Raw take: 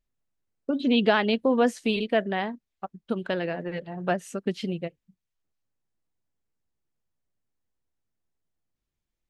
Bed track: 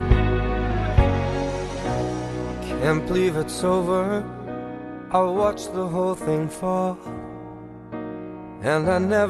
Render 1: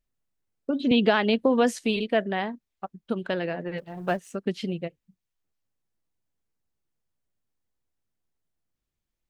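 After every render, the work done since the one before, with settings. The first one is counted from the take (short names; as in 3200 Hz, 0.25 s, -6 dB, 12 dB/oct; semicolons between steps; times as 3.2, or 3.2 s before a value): 0.91–1.79 three-band squash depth 70%; 3.78–4.35 G.711 law mismatch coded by A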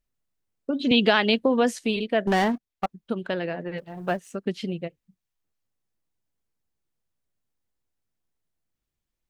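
0.81–1.39 high shelf 2100 Hz +8.5 dB; 2.27–2.86 sample leveller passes 3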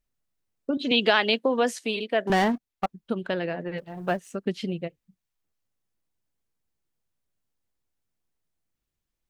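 0.77–2.3 Bessel high-pass 340 Hz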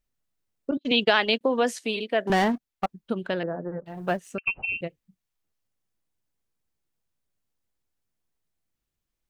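0.71–1.41 gate -29 dBFS, range -40 dB; 3.43–3.86 steep low-pass 1500 Hz 48 dB/oct; 4.38–4.81 inverted band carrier 2900 Hz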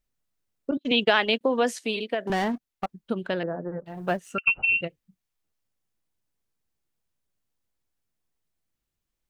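0.82–1.38 bell 4500 Hz -6.5 dB 0.29 oct; 2.14–3.02 compressor 2:1, threshold -26 dBFS; 4.27–4.85 small resonant body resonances 1400/2800 Hz, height 15 dB, ringing for 25 ms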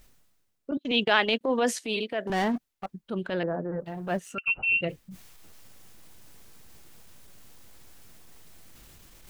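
reverse; upward compressor, threshold -25 dBFS; reverse; transient shaper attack -8 dB, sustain +1 dB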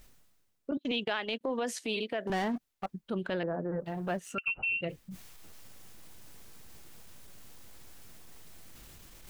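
compressor 10:1, threshold -29 dBFS, peak gain reduction 13 dB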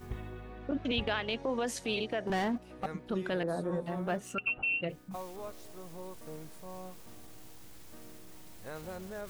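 add bed track -23 dB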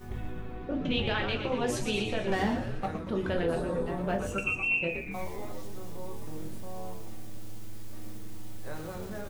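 frequency-shifting echo 0.118 s, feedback 58%, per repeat -110 Hz, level -7 dB; shoebox room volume 140 m³, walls furnished, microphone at 1.1 m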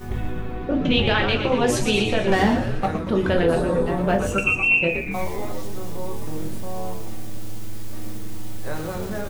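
gain +10 dB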